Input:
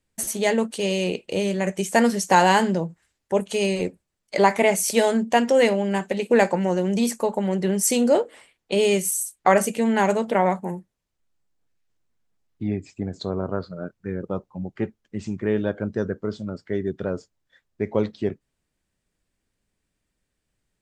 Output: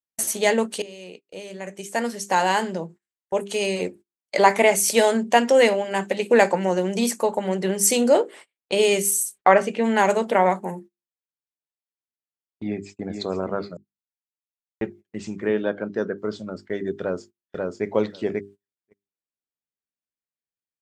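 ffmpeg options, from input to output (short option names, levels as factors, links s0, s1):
-filter_complex "[0:a]asplit=3[s0][s1][s2];[s0]afade=t=out:st=9.37:d=0.02[s3];[s1]lowpass=3200,afade=t=in:st=9.37:d=0.02,afade=t=out:st=9.83:d=0.02[s4];[s2]afade=t=in:st=9.83:d=0.02[s5];[s3][s4][s5]amix=inputs=3:normalize=0,asplit=2[s6][s7];[s7]afade=t=in:st=12.63:d=0.01,afade=t=out:st=13.08:d=0.01,aecho=0:1:460|920|1380|1840|2300:0.473151|0.189261|0.0757042|0.0302817|0.0121127[s8];[s6][s8]amix=inputs=2:normalize=0,asettb=1/sr,asplit=3[s9][s10][s11];[s9]atrim=end=15.494[s12];[s10]atrim=start=15.49:end=16.18,asetpts=PTS-STARTPTS,afade=t=in:d=0.004:c=qsin,afade=t=out:st=0.686:d=0.004:c=qsin,highpass=140,lowpass=5000[s13];[s11]atrim=start=16.176[s14];[s12][s13]acrossfade=d=0.004:c1=hsin:c2=qsin[s15];[s15][s14]acrossfade=d=0.004:c1=qsin:c2=hsin,asplit=2[s16][s17];[s17]afade=t=in:st=16.97:d=0.01,afade=t=out:st=17.86:d=0.01,aecho=0:1:540|1080:0.841395|0.0841395[s18];[s16][s18]amix=inputs=2:normalize=0,asplit=4[s19][s20][s21][s22];[s19]atrim=end=0.82,asetpts=PTS-STARTPTS,afade=t=out:st=0.816:d=0.004:c=hsin:silence=0.0891251[s23];[s20]atrim=start=0.82:end=13.77,asetpts=PTS-STARTPTS,afade=t=in:d=3.62:silence=0.0891251,afade=t=out:st=12.946:d=0.004:c=hsin[s24];[s21]atrim=start=13.77:end=14.81,asetpts=PTS-STARTPTS,volume=0[s25];[s22]atrim=start=14.81,asetpts=PTS-STARTPTS,afade=t=in:d=0.004:c=hsin[s26];[s23][s24][s25][s26]concat=n=4:v=0:a=1,highpass=f=290:p=1,bandreject=f=50:t=h:w=6,bandreject=f=100:t=h:w=6,bandreject=f=150:t=h:w=6,bandreject=f=200:t=h:w=6,bandreject=f=250:t=h:w=6,bandreject=f=300:t=h:w=6,bandreject=f=350:t=h:w=6,bandreject=f=400:t=h:w=6,agate=range=0.0562:threshold=0.00562:ratio=16:detection=peak,volume=1.41"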